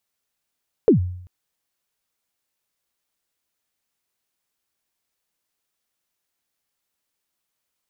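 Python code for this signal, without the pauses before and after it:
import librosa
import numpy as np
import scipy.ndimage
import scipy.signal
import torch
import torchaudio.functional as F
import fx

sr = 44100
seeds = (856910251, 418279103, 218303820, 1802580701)

y = fx.drum_kick(sr, seeds[0], length_s=0.39, level_db=-7.5, start_hz=500.0, end_hz=90.0, sweep_ms=114.0, decay_s=0.68, click=False)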